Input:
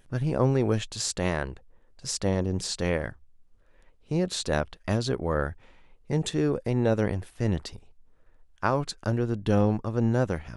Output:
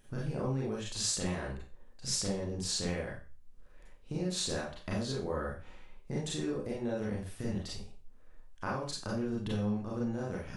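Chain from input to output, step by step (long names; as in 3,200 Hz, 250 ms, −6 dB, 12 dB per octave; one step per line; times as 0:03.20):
downward compressor, threshold −32 dBFS, peak gain reduction 14 dB
bass and treble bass +2 dB, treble +3 dB
mains-hum notches 60/120 Hz
four-comb reverb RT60 0.35 s, combs from 30 ms, DRR −5 dB
level −5.5 dB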